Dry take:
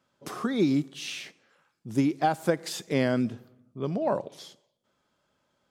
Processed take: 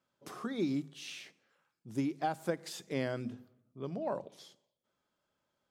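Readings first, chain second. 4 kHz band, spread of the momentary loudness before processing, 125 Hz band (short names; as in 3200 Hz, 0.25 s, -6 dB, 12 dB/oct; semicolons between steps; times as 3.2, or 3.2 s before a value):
-9.0 dB, 20 LU, -9.5 dB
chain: notches 50/100/150/200/250 Hz; gain -9 dB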